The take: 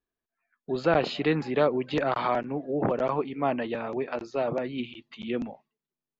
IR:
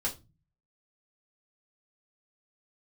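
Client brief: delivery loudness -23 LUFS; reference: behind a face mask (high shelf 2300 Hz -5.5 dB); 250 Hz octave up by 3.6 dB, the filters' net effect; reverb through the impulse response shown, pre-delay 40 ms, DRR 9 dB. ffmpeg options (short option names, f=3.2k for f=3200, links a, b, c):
-filter_complex "[0:a]equalizer=f=250:t=o:g=4.5,asplit=2[a][b];[1:a]atrim=start_sample=2205,adelay=40[c];[b][c]afir=irnorm=-1:irlink=0,volume=-13.5dB[d];[a][d]amix=inputs=2:normalize=0,highshelf=f=2.3k:g=-5.5,volume=3.5dB"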